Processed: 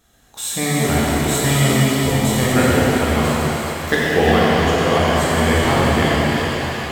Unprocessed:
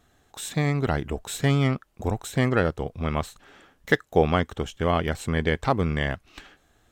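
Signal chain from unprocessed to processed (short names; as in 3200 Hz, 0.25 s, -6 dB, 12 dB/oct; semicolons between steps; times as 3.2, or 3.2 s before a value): high shelf 3900 Hz +9.5 dB; on a send: split-band echo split 660 Hz, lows 91 ms, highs 0.348 s, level -8 dB; on the sum: shimmer reverb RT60 3.6 s, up +7 st, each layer -8 dB, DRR -7.5 dB; gain -1 dB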